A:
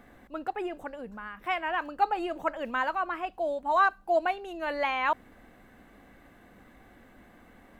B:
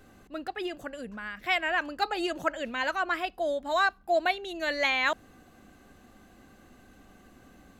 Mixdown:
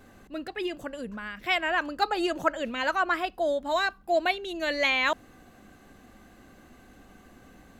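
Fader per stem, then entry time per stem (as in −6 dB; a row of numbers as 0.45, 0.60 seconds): −6.5, +1.5 decibels; 0.00, 0.00 seconds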